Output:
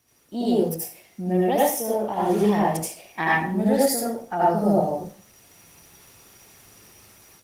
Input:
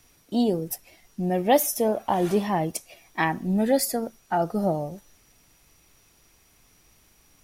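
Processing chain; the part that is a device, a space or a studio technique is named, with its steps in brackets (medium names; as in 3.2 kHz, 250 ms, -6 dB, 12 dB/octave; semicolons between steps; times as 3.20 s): far-field microphone of a smart speaker (reverberation RT60 0.45 s, pre-delay 73 ms, DRR -6 dB; high-pass 84 Hz 12 dB/octave; level rider gain up to 11 dB; trim -6.5 dB; Opus 20 kbps 48 kHz)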